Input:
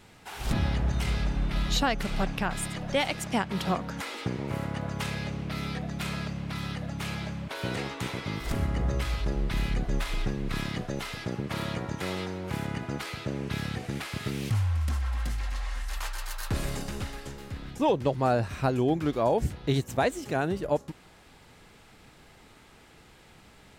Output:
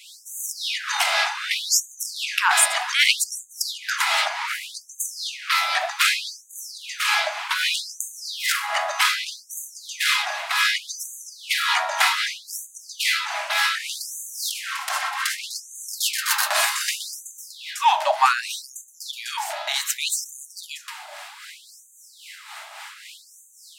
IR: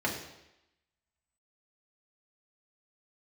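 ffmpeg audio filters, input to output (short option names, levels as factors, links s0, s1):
-filter_complex "[0:a]asplit=2[s0][s1];[1:a]atrim=start_sample=2205,adelay=27[s2];[s1][s2]afir=irnorm=-1:irlink=0,volume=0.1[s3];[s0][s3]amix=inputs=2:normalize=0,apsyclip=12.6,acrossover=split=650[s4][s5];[s4]aeval=exprs='val(0)*(1-0.5/2+0.5/2*cos(2*PI*3.7*n/s))':c=same[s6];[s5]aeval=exprs='val(0)*(1-0.5/2-0.5/2*cos(2*PI*3.7*n/s))':c=same[s7];[s6][s7]amix=inputs=2:normalize=0,afftfilt=real='re*gte(b*sr/1024,570*pow(6200/570,0.5+0.5*sin(2*PI*0.65*pts/sr)))':imag='im*gte(b*sr/1024,570*pow(6200/570,0.5+0.5*sin(2*PI*0.65*pts/sr)))':win_size=1024:overlap=0.75,volume=0.794"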